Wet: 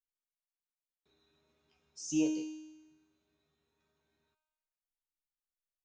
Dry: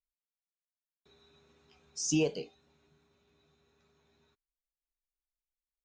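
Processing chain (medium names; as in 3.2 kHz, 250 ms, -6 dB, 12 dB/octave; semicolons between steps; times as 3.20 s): feedback comb 310 Hz, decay 1.1 s, mix 90%; trim +8.5 dB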